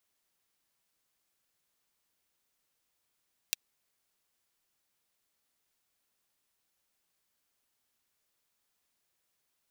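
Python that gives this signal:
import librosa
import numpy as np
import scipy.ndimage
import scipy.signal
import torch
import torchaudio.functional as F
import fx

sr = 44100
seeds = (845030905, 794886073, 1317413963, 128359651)

y = fx.drum_hat(sr, length_s=0.24, from_hz=2900.0, decay_s=0.02)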